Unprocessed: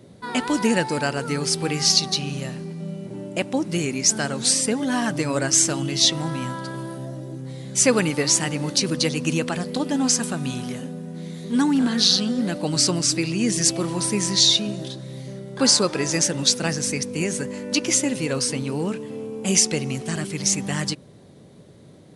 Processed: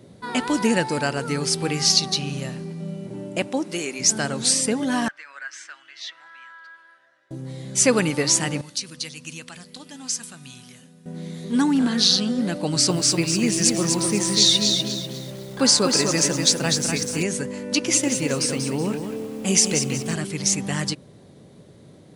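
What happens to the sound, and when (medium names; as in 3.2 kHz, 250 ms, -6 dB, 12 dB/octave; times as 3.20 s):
3.47–3.99 s: high-pass 210 Hz -> 450 Hz
5.08–7.31 s: ladder band-pass 1.8 kHz, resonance 60%
8.61–11.06 s: amplifier tone stack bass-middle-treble 5-5-5
12.65–17.23 s: bit-crushed delay 246 ms, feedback 35%, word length 7-bit, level -4.5 dB
17.75–20.14 s: bit-crushed delay 187 ms, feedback 35%, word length 7-bit, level -7 dB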